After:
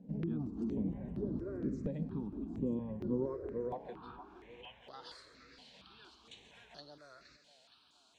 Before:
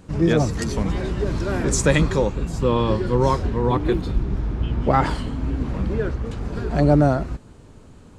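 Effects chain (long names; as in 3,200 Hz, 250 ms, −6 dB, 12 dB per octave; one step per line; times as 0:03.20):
downward compressor 5 to 1, threshold −26 dBFS, peak gain reduction 14 dB
band-pass filter sweep 250 Hz → 3,900 Hz, 0:03.10–0:04.87
on a send: feedback echo with a high-pass in the loop 467 ms, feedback 69%, high-pass 430 Hz, level −12 dB
on the sum: step-sequenced phaser 4.3 Hz 330–7,700 Hz
level +1 dB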